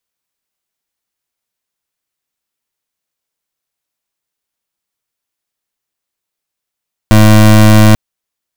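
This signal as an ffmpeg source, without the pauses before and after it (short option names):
-f lavfi -i "aevalsrc='0.631*(2*lt(mod(107*t,1),0.25)-1)':d=0.84:s=44100"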